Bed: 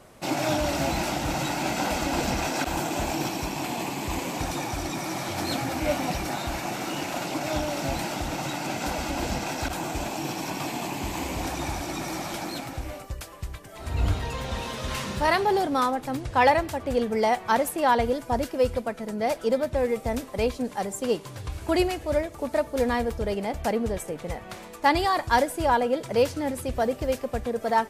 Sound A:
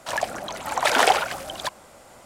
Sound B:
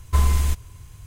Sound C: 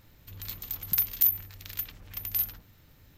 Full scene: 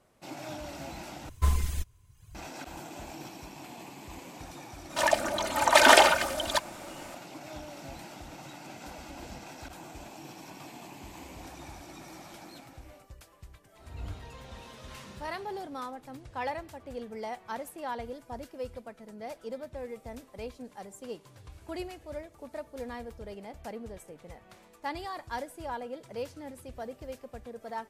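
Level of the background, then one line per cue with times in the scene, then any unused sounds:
bed -15 dB
1.29 replace with B -6 dB + reverb removal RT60 1 s
4.9 add A -0.5 dB + comb 3.3 ms, depth 85%
not used: C

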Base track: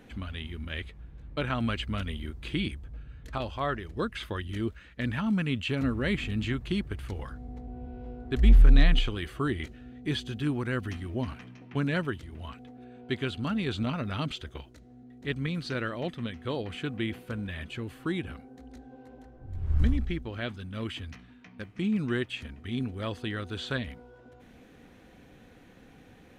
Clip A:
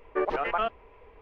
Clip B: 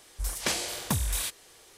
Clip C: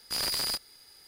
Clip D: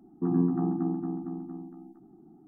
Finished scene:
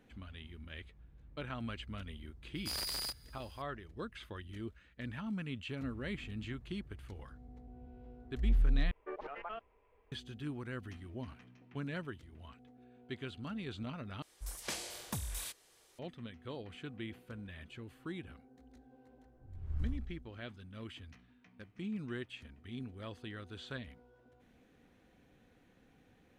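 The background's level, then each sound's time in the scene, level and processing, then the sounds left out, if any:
base track -12 dB
2.55 add C -8.5 dB
8.91 replace with A -16.5 dB
14.22 replace with B -11.5 dB
not used: D

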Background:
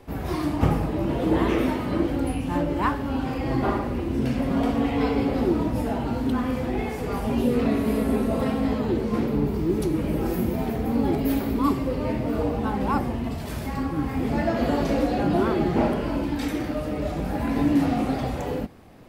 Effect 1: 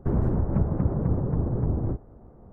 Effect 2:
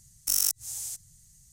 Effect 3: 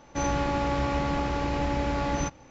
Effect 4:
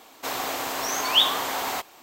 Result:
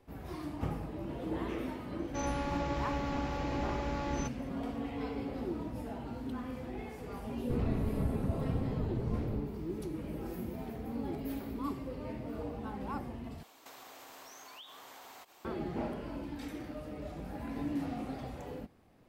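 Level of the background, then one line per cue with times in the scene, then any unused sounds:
background -15 dB
1.99 add 3 -8.5 dB
7.44 add 1 -10 dB
13.43 replace with 4 -9 dB + compressor 12:1, threshold -39 dBFS
not used: 2

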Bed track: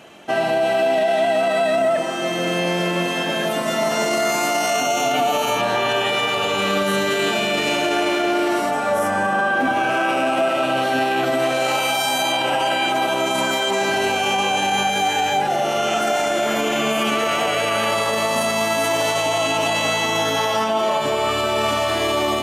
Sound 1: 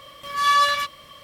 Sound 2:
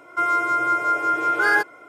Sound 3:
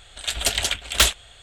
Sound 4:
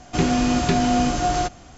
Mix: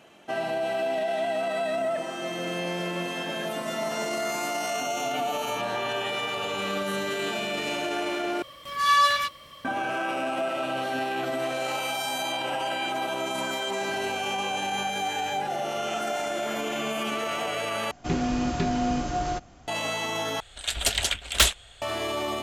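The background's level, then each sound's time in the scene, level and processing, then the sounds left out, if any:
bed track -9.5 dB
8.42 replace with 1 -2 dB
17.91 replace with 4 -6.5 dB + high shelf 3700 Hz -5.5 dB
20.4 replace with 3 -2.5 dB
not used: 2

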